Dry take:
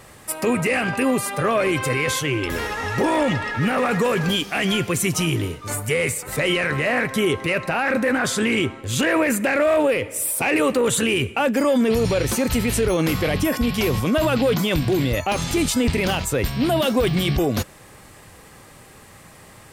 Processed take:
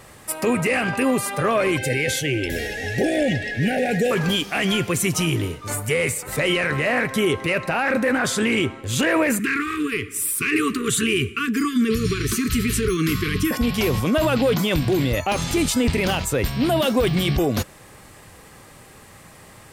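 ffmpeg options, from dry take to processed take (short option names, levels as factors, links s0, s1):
-filter_complex "[0:a]asettb=1/sr,asplit=3[s0][s1][s2];[s0]atrim=end=1.774[s3];[s1]atrim=start=1.77:end=4.11,asetpts=PTS-STARTPTS,afade=t=in:d=0.004:c=qsin,afade=t=out:st=2.336:d=0.004:c=qsin,asuperstop=centerf=1100:order=20:qfactor=1.6[s4];[s2]atrim=start=4.106[s5];[s3][s4]acrossfade=d=0.004:c1=hsin:c2=qsin[s6];[s6][s5]acrossfade=d=0.004:c1=qsin:c2=hsin,asettb=1/sr,asplit=3[s7][s8][s9];[s7]atrim=end=9.394[s10];[s8]atrim=start=9.39:end=13.51,asetpts=PTS-STARTPTS,afade=t=in:d=0.004:c=qsin,afade=t=out:st=4.116:d=0.004:c=qsin,asuperstop=centerf=690:order=20:qfactor=1.1[s11];[s9]atrim=start=13.506[s12];[s10][s11]acrossfade=d=0.004:c1=hsin:c2=qsin[s13];[s13][s12]acrossfade=d=0.004:c1=qsin:c2=hsin"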